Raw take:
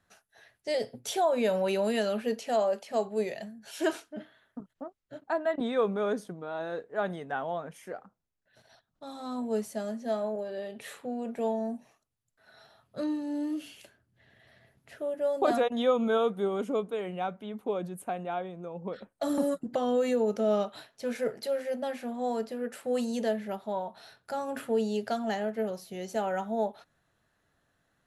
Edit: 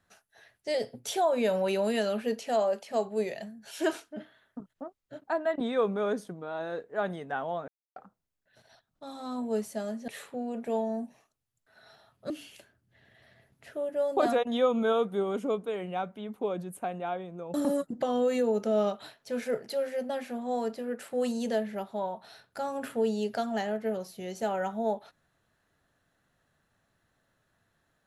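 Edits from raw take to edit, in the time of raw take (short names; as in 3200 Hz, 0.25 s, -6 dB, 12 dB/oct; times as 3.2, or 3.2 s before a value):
7.68–7.96 mute
10.08–10.79 cut
13.01–13.55 cut
18.79–19.27 cut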